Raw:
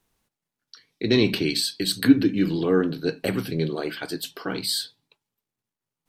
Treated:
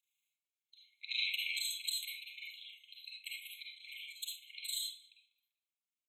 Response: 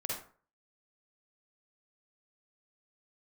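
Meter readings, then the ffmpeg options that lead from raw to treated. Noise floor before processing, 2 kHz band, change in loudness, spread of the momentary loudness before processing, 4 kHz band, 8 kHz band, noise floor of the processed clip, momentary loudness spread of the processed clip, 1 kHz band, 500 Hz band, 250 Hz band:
under -85 dBFS, -10.0 dB, -15.5 dB, 12 LU, -10.0 dB, -9.0 dB, under -85 dBFS, 16 LU, under -40 dB, under -40 dB, under -40 dB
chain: -filter_complex "[0:a]tremolo=f=26:d=1,asplit=2[a][b];[b]adelay=195,lowpass=f=1.9k:p=1,volume=-15dB,asplit=2[c][d];[d]adelay=195,lowpass=f=1.9k:p=1,volume=0.47,asplit=2[e][f];[f]adelay=195,lowpass=f=1.9k:p=1,volume=0.47,asplit=2[g][h];[h]adelay=195,lowpass=f=1.9k:p=1,volume=0.47[i];[a][c][e][g][i]amix=inputs=5:normalize=0[j];[1:a]atrim=start_sample=2205[k];[j][k]afir=irnorm=-1:irlink=0,flanger=delay=2.2:depth=5.2:regen=78:speed=1.6:shape=sinusoidal,afftfilt=real='re*eq(mod(floor(b*sr/1024/2100),2),1)':imag='im*eq(mod(floor(b*sr/1024/2100),2),1)':win_size=1024:overlap=0.75,volume=1dB"

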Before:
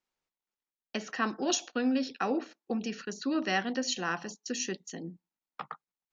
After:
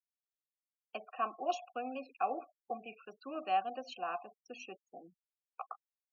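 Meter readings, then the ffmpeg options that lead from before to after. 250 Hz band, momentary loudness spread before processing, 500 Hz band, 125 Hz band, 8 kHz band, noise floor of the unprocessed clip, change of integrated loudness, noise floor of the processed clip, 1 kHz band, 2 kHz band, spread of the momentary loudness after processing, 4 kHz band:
-17.5 dB, 15 LU, -6.0 dB, under -20 dB, n/a, under -85 dBFS, -7.5 dB, under -85 dBFS, +1.0 dB, -13.0 dB, 17 LU, -14.5 dB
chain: -filter_complex "[0:a]asplit=3[a][b][c];[a]bandpass=f=730:t=q:w=8,volume=0dB[d];[b]bandpass=f=1.09k:t=q:w=8,volume=-6dB[e];[c]bandpass=f=2.44k:t=q:w=8,volume=-9dB[f];[d][e][f]amix=inputs=3:normalize=0,afftfilt=real='re*gte(hypot(re,im),0.00224)':imag='im*gte(hypot(re,im),0.00224)':win_size=1024:overlap=0.75,volume=5dB"

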